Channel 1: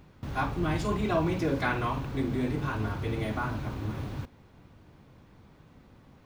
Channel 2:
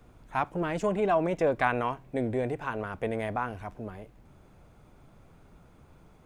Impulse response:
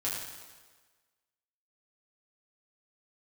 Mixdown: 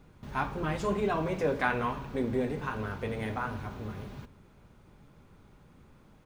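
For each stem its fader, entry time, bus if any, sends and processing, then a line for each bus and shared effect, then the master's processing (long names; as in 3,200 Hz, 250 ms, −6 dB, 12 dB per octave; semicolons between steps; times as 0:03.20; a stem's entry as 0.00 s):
−6.5 dB, 0.00 s, no send, comb filter 4.9 ms, depth 48%
−5.0 dB, 0.00 s, send −12 dB, parametric band 680 Hz −9 dB 0.27 octaves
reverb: on, RT60 1.4 s, pre-delay 5 ms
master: no processing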